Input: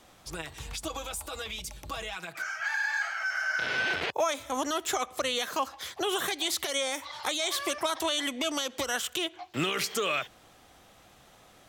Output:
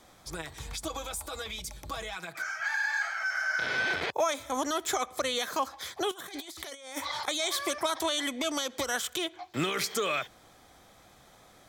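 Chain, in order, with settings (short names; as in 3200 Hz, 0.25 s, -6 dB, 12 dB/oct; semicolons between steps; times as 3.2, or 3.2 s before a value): notch 2800 Hz, Q 6.5; 6.11–7.28 negative-ratio compressor -38 dBFS, ratio -0.5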